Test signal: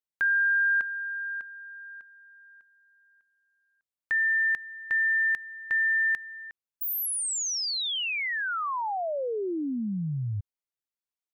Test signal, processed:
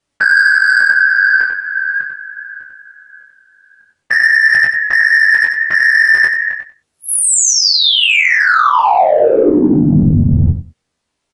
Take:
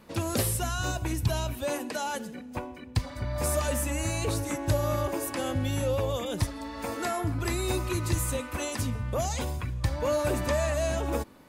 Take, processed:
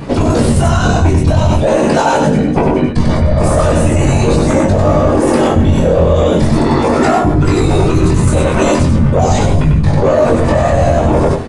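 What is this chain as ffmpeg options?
ffmpeg -i in.wav -filter_complex "[0:a]afftfilt=real='hypot(re,im)*cos(2*PI*random(0))':imag='hypot(re,im)*sin(2*PI*random(1))':win_size=512:overlap=0.75,aresample=22050,aresample=44100,aemphasis=mode=reproduction:type=50kf,asplit=2[link_01][link_02];[link_02]adynamicsmooth=sensitivity=2.5:basefreq=740,volume=0.5dB[link_03];[link_01][link_03]amix=inputs=2:normalize=0,highshelf=frequency=6200:gain=4.5,asplit=2[link_04][link_05];[link_05]adelay=13,volume=-8dB[link_06];[link_04][link_06]amix=inputs=2:normalize=0,aecho=1:1:95|190|285:0.596|0.0953|0.0152,asoftclip=type=tanh:threshold=-15.5dB,areverse,acompressor=threshold=-40dB:ratio=12:attack=39:release=65:knee=6:detection=rms,areverse,flanger=delay=20:depth=3.5:speed=0.41,alimiter=level_in=35dB:limit=-1dB:release=50:level=0:latency=1,volume=-1dB" out.wav

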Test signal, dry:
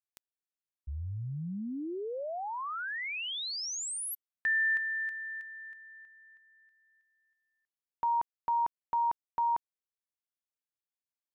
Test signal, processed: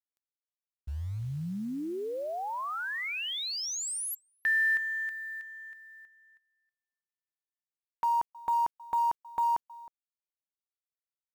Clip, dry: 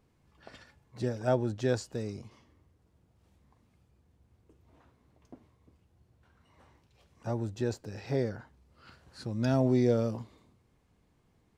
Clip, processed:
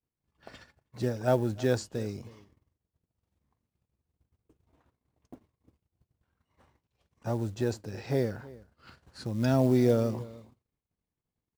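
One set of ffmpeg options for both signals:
ffmpeg -i in.wav -filter_complex "[0:a]asplit=2[link_01][link_02];[link_02]adelay=314.9,volume=-20dB,highshelf=frequency=4000:gain=-7.08[link_03];[link_01][link_03]amix=inputs=2:normalize=0,acrusher=bits=7:mode=log:mix=0:aa=0.000001,agate=range=-33dB:threshold=-57dB:ratio=3:release=47:detection=peak,volume=2dB" out.wav

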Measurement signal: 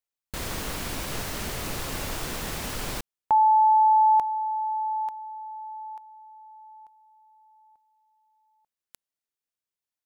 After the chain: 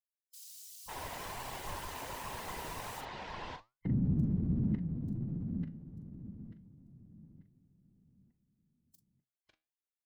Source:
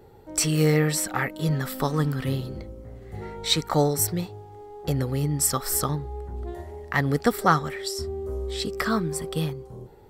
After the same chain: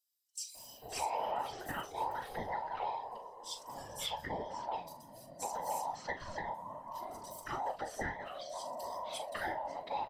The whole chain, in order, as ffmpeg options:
ffmpeg -i in.wav -filter_complex "[0:a]afftfilt=real='real(if(between(b,1,1008),(2*floor((b-1)/48)+1)*48-b,b),0)':imag='imag(if(between(b,1,1008),(2*floor((b-1)/48)+1)*48-b,b),0)*if(between(b,1,1008),-1,1)':win_size=2048:overlap=0.75,acrossover=split=6300[link_01][link_02];[link_02]acompressor=threshold=-37dB:ratio=4:attack=1:release=60[link_03];[link_01][link_03]amix=inputs=2:normalize=0,lowshelf=frequency=71:gain=6.5,bandreject=frequency=1000:width=22,asplit=2[link_04][link_05];[link_05]adelay=41,volume=-9.5dB[link_06];[link_04][link_06]amix=inputs=2:normalize=0,acrossover=split=4700[link_07][link_08];[link_07]adelay=550[link_09];[link_09][link_08]amix=inputs=2:normalize=0,alimiter=limit=-17dB:level=0:latency=1:release=222,afftfilt=real='hypot(re,im)*cos(2*PI*random(0))':imag='hypot(re,im)*sin(2*PI*random(1))':win_size=512:overlap=0.75,flanger=delay=7.2:depth=5.5:regen=78:speed=1.3:shape=sinusoidal" out.wav

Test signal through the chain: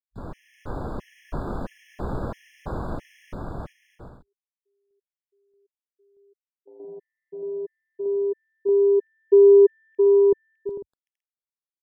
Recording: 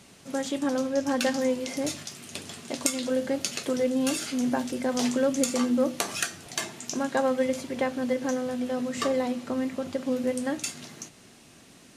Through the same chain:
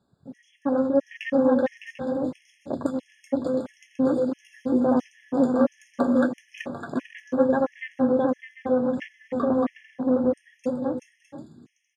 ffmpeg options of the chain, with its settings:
ffmpeg -i in.wav -filter_complex "[0:a]lowpass=frequency=1700:poles=1,afwtdn=0.0158,dynaudnorm=framelen=170:gausssize=7:maxgain=4dB,asplit=2[link_01][link_02];[link_02]aecho=0:1:380|608|744.8|826.9|876.1:0.631|0.398|0.251|0.158|0.1[link_03];[link_01][link_03]amix=inputs=2:normalize=0,afftfilt=real='re*gt(sin(2*PI*1.5*pts/sr)*(1-2*mod(floor(b*sr/1024/1700),2)),0)':imag='im*gt(sin(2*PI*1.5*pts/sr)*(1-2*mod(floor(b*sr/1024/1700),2)),0)':win_size=1024:overlap=0.75,volume=1.5dB" out.wav

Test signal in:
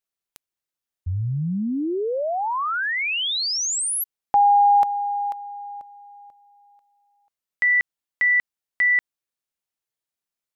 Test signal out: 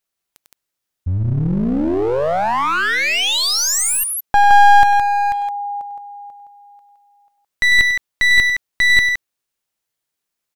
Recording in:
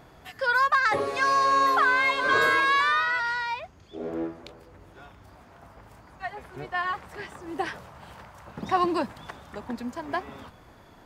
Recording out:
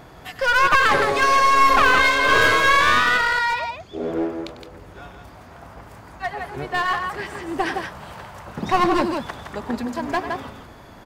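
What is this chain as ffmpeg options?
ffmpeg -i in.wav -af "aecho=1:1:98|166:0.211|0.501,aeval=exprs='clip(val(0),-1,0.0473)':channel_layout=same,volume=7.5dB" out.wav

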